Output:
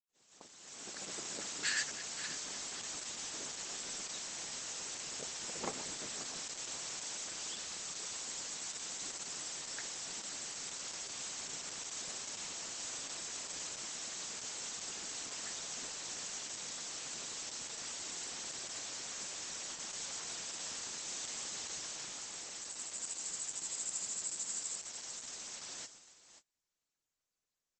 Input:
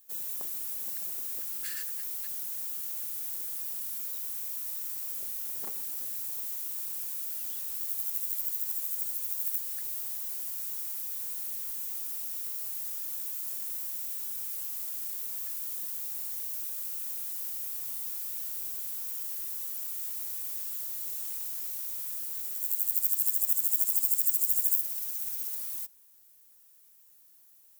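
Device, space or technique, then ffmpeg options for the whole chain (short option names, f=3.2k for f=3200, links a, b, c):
video call: -af "highpass=130,highshelf=f=8.7k:g=-6,aecho=1:1:533|1066|1599:0.224|0.0739|0.0244,dynaudnorm=f=590:g=3:m=15.5dB,agate=range=-35dB:threshold=-37dB:ratio=16:detection=peak,volume=-4.5dB" -ar 48000 -c:a libopus -b:a 12k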